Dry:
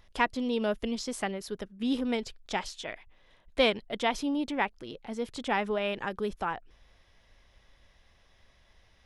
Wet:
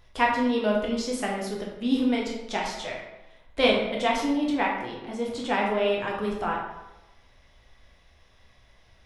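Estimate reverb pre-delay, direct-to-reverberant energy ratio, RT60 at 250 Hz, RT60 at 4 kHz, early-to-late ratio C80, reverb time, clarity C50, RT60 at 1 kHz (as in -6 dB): 8 ms, -2.5 dB, 0.95 s, 0.65 s, 6.0 dB, 1.0 s, 3.0 dB, 1.0 s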